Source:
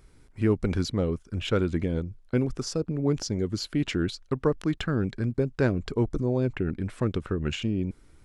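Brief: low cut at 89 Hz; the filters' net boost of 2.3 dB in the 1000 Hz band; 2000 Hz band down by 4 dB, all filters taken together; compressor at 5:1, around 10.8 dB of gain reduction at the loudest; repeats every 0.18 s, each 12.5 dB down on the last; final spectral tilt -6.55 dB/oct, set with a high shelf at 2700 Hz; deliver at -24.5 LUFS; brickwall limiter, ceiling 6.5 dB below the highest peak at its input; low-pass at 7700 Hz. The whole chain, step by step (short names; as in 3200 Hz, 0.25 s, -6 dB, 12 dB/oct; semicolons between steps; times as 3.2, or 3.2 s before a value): HPF 89 Hz; LPF 7700 Hz; bell 1000 Hz +6 dB; bell 2000 Hz -6 dB; high shelf 2700 Hz -6 dB; compressor 5:1, threshold -31 dBFS; limiter -26.5 dBFS; feedback echo 0.18 s, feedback 24%, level -12.5 dB; gain +13.5 dB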